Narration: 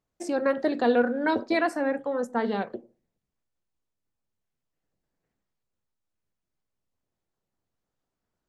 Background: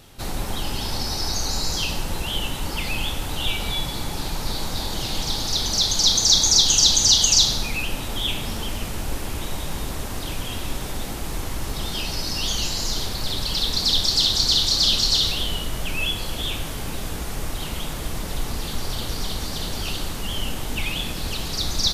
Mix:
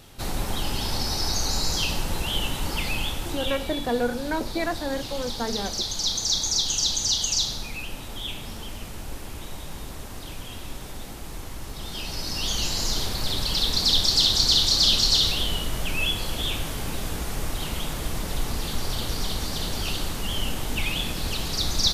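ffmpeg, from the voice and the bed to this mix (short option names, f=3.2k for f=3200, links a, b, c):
-filter_complex "[0:a]adelay=3050,volume=-3dB[a];[1:a]volume=7dB,afade=t=out:st=2.77:d=0.97:silence=0.421697,afade=t=in:st=11.76:d=1.06:silence=0.421697[b];[a][b]amix=inputs=2:normalize=0"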